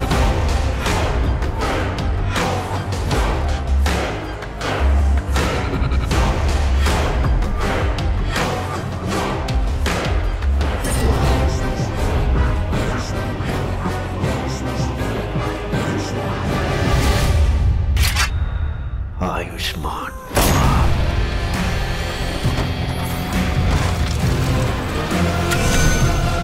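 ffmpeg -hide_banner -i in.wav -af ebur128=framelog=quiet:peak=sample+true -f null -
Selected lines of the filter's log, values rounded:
Integrated loudness:
  I:         -20.0 LUFS
  Threshold: -29.9 LUFS
Loudness range:
  LRA:         2.5 LU
  Threshold: -40.1 LUFS
  LRA low:   -21.4 LUFS
  LRA high:  -18.9 LUFS
Sample peak:
  Peak:       -4.2 dBFS
True peak:
  Peak:       -4.2 dBFS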